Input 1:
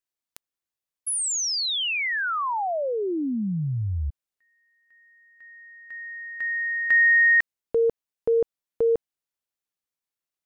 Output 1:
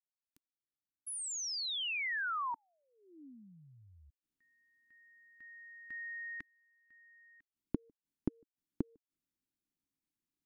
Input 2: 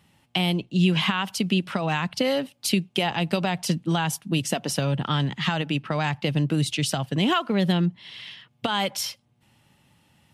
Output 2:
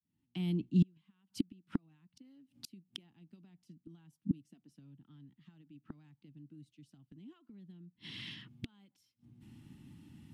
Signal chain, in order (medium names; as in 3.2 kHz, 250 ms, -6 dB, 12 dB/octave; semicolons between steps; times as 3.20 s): fade-in on the opening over 3.16 s; inverted gate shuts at -25 dBFS, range -39 dB; resonant low shelf 400 Hz +11 dB, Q 3; trim -6 dB